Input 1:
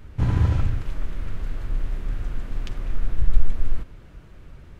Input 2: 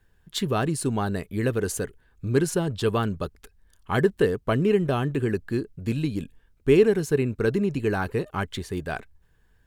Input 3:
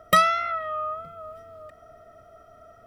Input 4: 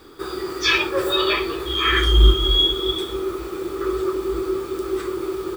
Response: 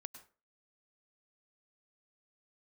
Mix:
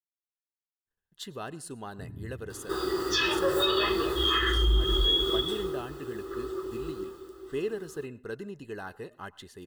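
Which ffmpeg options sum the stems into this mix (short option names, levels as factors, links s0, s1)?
-filter_complex "[0:a]lowpass=1500,afwtdn=0.0891,highpass=120,adelay=1800,volume=0.141[s0];[1:a]agate=range=0.0224:threshold=0.00251:ratio=3:detection=peak,lowshelf=f=260:g=-10.5,adelay=850,volume=0.211,asplit=2[s1][s2];[s2]volume=0.596[s3];[3:a]bandreject=f=221.1:t=h:w=4,bandreject=f=442.2:t=h:w=4,bandreject=f=663.3:t=h:w=4,bandreject=f=884.4:t=h:w=4,bandreject=f=1105.5:t=h:w=4,bandreject=f=1326.6:t=h:w=4,bandreject=f=1547.7:t=h:w=4,bandreject=f=1768.8:t=h:w=4,bandreject=f=1989.9:t=h:w=4,bandreject=f=2211:t=h:w=4,bandreject=f=2432.1:t=h:w=4,bandreject=f=2653.2:t=h:w=4,bandreject=f=2874.3:t=h:w=4,bandreject=f=3095.4:t=h:w=4,bandreject=f=3316.5:t=h:w=4,bandreject=f=3537.6:t=h:w=4,bandreject=f=3758.7:t=h:w=4,bandreject=f=3979.8:t=h:w=4,bandreject=f=4200.9:t=h:w=4,bandreject=f=4422:t=h:w=4,bandreject=f=4643.1:t=h:w=4,bandreject=f=4864.2:t=h:w=4,bandreject=f=5085.3:t=h:w=4,bandreject=f=5306.4:t=h:w=4,bandreject=f=5527.5:t=h:w=4,bandreject=f=5748.6:t=h:w=4,bandreject=f=5969.7:t=h:w=4,bandreject=f=6190.8:t=h:w=4,bandreject=f=6411.9:t=h:w=4,adelay=2500,volume=0.841,afade=t=out:st=5.23:d=0.64:silence=0.298538,afade=t=out:st=6.85:d=0.5:silence=0.354813[s4];[4:a]atrim=start_sample=2205[s5];[s3][s5]afir=irnorm=-1:irlink=0[s6];[s0][s1][s4][s6]amix=inputs=4:normalize=0,asuperstop=centerf=2300:order=20:qfactor=6.3,alimiter=limit=0.158:level=0:latency=1:release=161"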